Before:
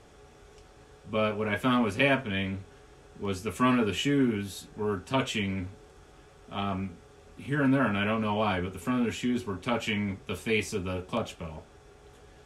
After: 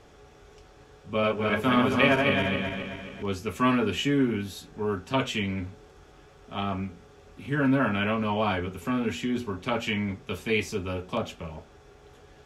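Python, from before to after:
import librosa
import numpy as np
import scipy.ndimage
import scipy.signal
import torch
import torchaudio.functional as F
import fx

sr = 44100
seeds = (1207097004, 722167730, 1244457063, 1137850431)

y = fx.reverse_delay_fb(x, sr, ms=133, feedback_pct=68, wet_db=-3, at=(1.1, 3.23))
y = fx.peak_eq(y, sr, hz=9000.0, db=-8.5, octaves=0.45)
y = fx.hum_notches(y, sr, base_hz=60, count=4)
y = y * 10.0 ** (1.5 / 20.0)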